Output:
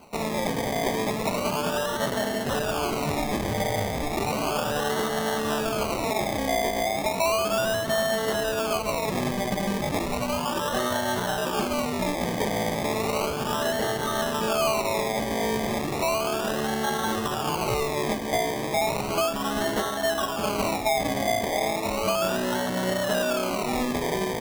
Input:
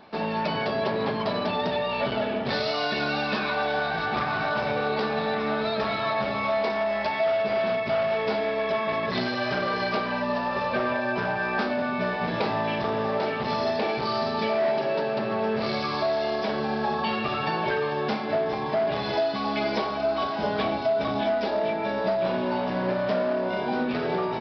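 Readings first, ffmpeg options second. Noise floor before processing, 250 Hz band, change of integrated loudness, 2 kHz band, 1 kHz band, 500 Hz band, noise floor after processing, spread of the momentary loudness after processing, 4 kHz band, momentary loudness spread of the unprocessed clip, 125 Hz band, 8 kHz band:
−29 dBFS, +1.0 dB, 0.0 dB, −1.5 dB, 0.0 dB, −1.0 dB, −30 dBFS, 3 LU, +2.5 dB, 2 LU, +2.5 dB, can't be measured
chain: -af "acrusher=samples=25:mix=1:aa=0.000001:lfo=1:lforange=15:lforate=0.34"

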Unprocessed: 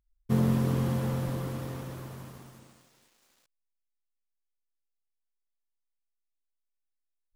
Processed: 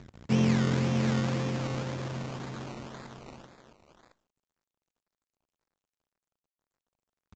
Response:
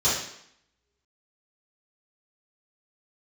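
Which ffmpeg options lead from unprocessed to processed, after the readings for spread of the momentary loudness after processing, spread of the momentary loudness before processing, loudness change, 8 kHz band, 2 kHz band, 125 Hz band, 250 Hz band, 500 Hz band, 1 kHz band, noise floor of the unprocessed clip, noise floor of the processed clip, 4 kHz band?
20 LU, 17 LU, +0.5 dB, +4.0 dB, +8.5 dB, +0.5 dB, +2.5 dB, +2.5 dB, +3.5 dB, −82 dBFS, below −85 dBFS, +8.5 dB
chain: -filter_complex "[0:a]aeval=exprs='val(0)+0.5*0.0211*sgn(val(0))':channel_layout=same,highpass=110,lowpass=4000,aecho=1:1:658:0.316,asplit=2[link_01][link_02];[1:a]atrim=start_sample=2205,asetrate=66150,aresample=44100[link_03];[link_02][link_03]afir=irnorm=-1:irlink=0,volume=-31.5dB[link_04];[link_01][link_04]amix=inputs=2:normalize=0,acrusher=samples=21:mix=1:aa=0.000001:lfo=1:lforange=12.6:lforate=1.9" -ar 16000 -c:a pcm_mulaw

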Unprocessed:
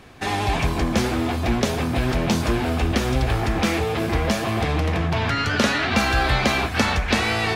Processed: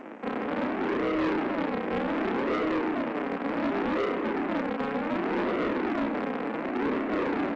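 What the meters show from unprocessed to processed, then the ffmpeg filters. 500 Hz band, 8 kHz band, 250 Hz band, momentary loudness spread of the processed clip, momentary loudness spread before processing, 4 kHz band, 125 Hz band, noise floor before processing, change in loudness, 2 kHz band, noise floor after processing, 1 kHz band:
−3.5 dB, below −25 dB, −4.0 dB, 4 LU, 3 LU, −18.0 dB, −20.5 dB, −26 dBFS, −7.5 dB, −10.5 dB, −33 dBFS, −7.0 dB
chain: -filter_complex "[0:a]afftdn=noise_reduction=24:noise_floor=-35,acompressor=mode=upward:threshold=-33dB:ratio=2.5,alimiter=limit=-16.5dB:level=0:latency=1:release=31,acontrast=60,flanger=delay=4.3:depth=4:regen=-6:speed=0.32:shape=sinusoidal,aeval=exprs='val(0)+0.02*(sin(2*PI*50*n/s)+sin(2*PI*2*50*n/s)/2+sin(2*PI*3*50*n/s)/3+sin(2*PI*4*50*n/s)/4+sin(2*PI*5*50*n/s)/5)':channel_layout=same,aresample=16000,acrusher=samples=39:mix=1:aa=0.000001:lfo=1:lforange=39:lforate=0.67,aresample=44100,highpass=frequency=180:width_type=q:width=0.5412,highpass=frequency=180:width_type=q:width=1.307,lowpass=frequency=2400:width_type=q:width=0.5176,lowpass=frequency=2400:width_type=q:width=0.7071,lowpass=frequency=2400:width_type=q:width=1.932,afreqshift=70,asplit=2[link_01][link_02];[link_02]adelay=32,volume=-3.5dB[link_03];[link_01][link_03]amix=inputs=2:normalize=0,asplit=2[link_04][link_05];[link_05]aecho=0:1:100|200|300|400|500|600:0.168|0.099|0.0584|0.0345|0.0203|0.012[link_06];[link_04][link_06]amix=inputs=2:normalize=0,asoftclip=type=tanh:threshold=-23.5dB" -ar 16000 -c:a g722

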